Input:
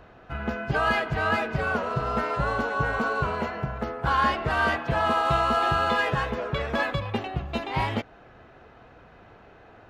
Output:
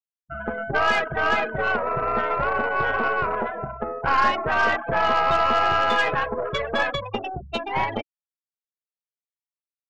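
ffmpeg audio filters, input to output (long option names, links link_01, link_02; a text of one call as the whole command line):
ffmpeg -i in.wav -filter_complex "[0:a]afftfilt=real='re*gte(hypot(re,im),0.0562)':imag='im*gte(hypot(re,im),0.0562)':win_size=1024:overlap=0.75,bass=frequency=250:gain=-12,treble=frequency=4000:gain=10,aeval=exprs='0.282*(cos(1*acos(clip(val(0)/0.282,-1,1)))-cos(1*PI/2))+0.0251*(cos(6*acos(clip(val(0)/0.282,-1,1)))-cos(6*PI/2))':channel_layout=same,asplit=2[link_01][link_02];[link_02]alimiter=limit=-19dB:level=0:latency=1:release=136,volume=-1.5dB[link_03];[link_01][link_03]amix=inputs=2:normalize=0" out.wav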